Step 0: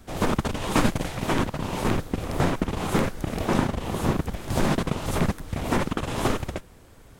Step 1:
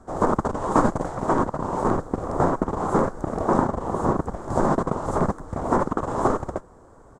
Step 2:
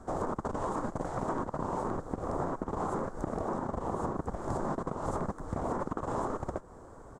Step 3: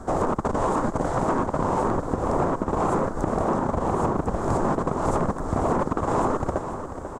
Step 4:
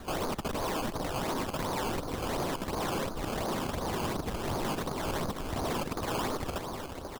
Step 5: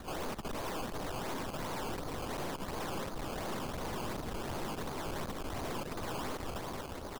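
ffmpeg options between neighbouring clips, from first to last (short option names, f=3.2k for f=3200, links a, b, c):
-af "firequalizer=gain_entry='entry(110,0);entry(380,7);entry(1100,10);entry(2500,-18);entry(7500,0);entry(12000,-21)':delay=0.05:min_phase=1,volume=-2.5dB"
-af "alimiter=limit=-14.5dB:level=0:latency=1:release=203,acompressor=threshold=-31dB:ratio=4"
-filter_complex "[0:a]asplit=2[a][b];[b]asoftclip=type=tanh:threshold=-31.5dB,volume=-4.5dB[c];[a][c]amix=inputs=2:normalize=0,aecho=1:1:491|982|1473|1964|2455:0.299|0.149|0.0746|0.0373|0.0187,volume=7dB"
-af "acrusher=samples=16:mix=1:aa=0.000001:lfo=1:lforange=16:lforate=2.8,asoftclip=type=tanh:threshold=-21.5dB,volume=-6dB"
-af "aeval=exprs='(tanh(89.1*val(0)+0.6)-tanh(0.6))/89.1':c=same,volume=2dB"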